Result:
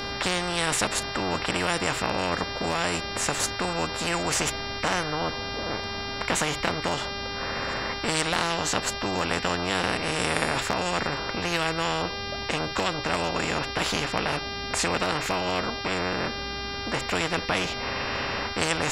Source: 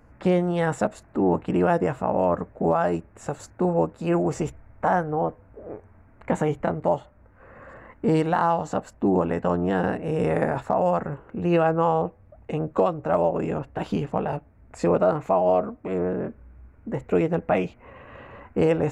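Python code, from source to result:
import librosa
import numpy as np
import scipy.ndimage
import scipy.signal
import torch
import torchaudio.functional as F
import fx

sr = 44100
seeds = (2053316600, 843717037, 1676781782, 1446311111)

y = fx.dmg_buzz(x, sr, base_hz=400.0, harmonics=14, level_db=-47.0, tilt_db=-5, odd_only=False)
y = fx.spectral_comp(y, sr, ratio=4.0)
y = y * 10.0 ** (4.5 / 20.0)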